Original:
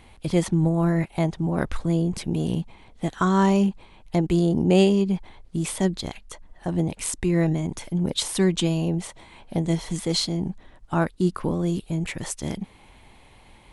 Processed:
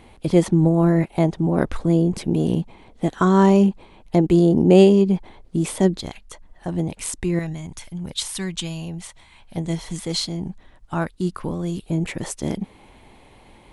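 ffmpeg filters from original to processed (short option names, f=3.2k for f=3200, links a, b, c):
-af "asetnsamples=n=441:p=0,asendcmd='5.99 equalizer g 0;7.39 equalizer g -11.5;9.57 equalizer g -2.5;11.86 equalizer g 6.5',equalizer=f=370:t=o:w=2.4:g=7"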